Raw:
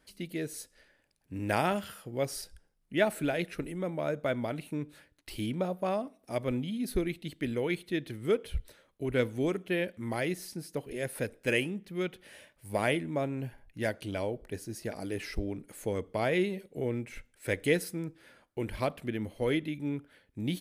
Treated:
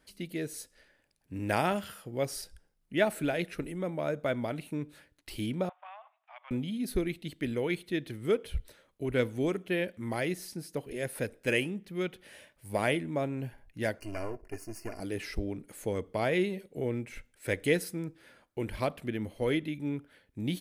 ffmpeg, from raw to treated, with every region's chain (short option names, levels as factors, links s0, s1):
-filter_complex "[0:a]asettb=1/sr,asplit=3[s0][s1][s2];[s0]atrim=end=5.694[s3];[s1]atrim=start=5.69:end=6.51,asetpts=PTS-STARTPTS,afade=t=in:d=0.004:c=qsin,afade=t=out:st=0.816:d=0.004:c=qsin,aeval=exprs='if(lt(val(0),0),0.708*val(0),val(0))':c=same,asuperpass=centerf=1600:order=12:qfactor=0.62,acompressor=threshold=0.00316:ratio=2:attack=3.2:release=140:knee=1:detection=peak[s4];[s2]atrim=start=6.506[s5];[s3][s4]acrossfade=d=0.004:c1=hsin:c2=qsin[s6];[s6][s5]acrossfade=d=0.004:c1=qsin:c2=hsin,asettb=1/sr,asplit=3[s7][s8][s9];[s7]atrim=end=13.994[s10];[s8]atrim=start=13.99:end=15,asetpts=PTS-STARTPTS,afade=t=in:d=0.004:c=qsin,afade=t=out:st=1.006:d=0.004:c=qsin,aeval=exprs='if(lt(val(0),0),0.251*val(0),val(0))':c=same,asuperstop=centerf=3600:order=12:qfactor=2.5,aecho=1:1:2.9:0.53,atrim=end_sample=44541[s11];[s9]atrim=start=14.996[s12];[s10][s11]acrossfade=d=0.004:c1=hsin:c2=qsin[s13];[s13][s12]acrossfade=d=0.004:c1=qsin:c2=hsin"